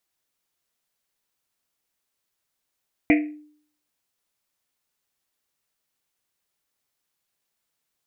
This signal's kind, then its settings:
drum after Risset, pitch 300 Hz, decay 0.58 s, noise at 2,200 Hz, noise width 700 Hz, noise 20%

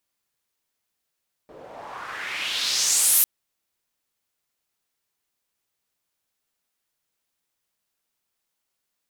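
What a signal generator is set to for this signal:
filter sweep on noise pink, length 1.75 s bandpass, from 430 Hz, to 13,000 Hz, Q 2.6, exponential, gain ramp +31 dB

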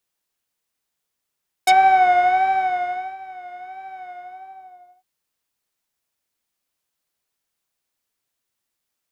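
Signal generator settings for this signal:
subtractive patch with vibrato F#5, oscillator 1 square, interval 0 semitones, detune 29 cents, oscillator 2 level −4.5 dB, sub −21.5 dB, noise −11.5 dB, filter lowpass, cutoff 860 Hz, Q 1.5, filter envelope 4 octaves, filter decay 0.05 s, filter sustain 20%, attack 5.3 ms, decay 1.49 s, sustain −23.5 dB, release 0.94 s, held 2.42 s, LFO 1.5 Hz, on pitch 60 cents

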